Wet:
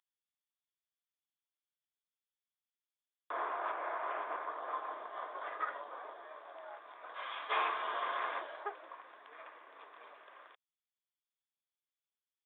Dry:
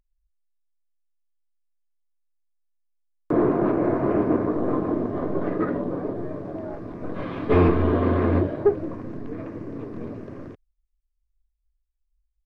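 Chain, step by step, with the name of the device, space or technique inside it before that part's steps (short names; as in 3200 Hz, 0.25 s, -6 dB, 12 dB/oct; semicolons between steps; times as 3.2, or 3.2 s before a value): musical greeting card (downsampling 8000 Hz; HPF 860 Hz 24 dB/oct; bell 3400 Hz +11 dB 0.22 oct); gain -3.5 dB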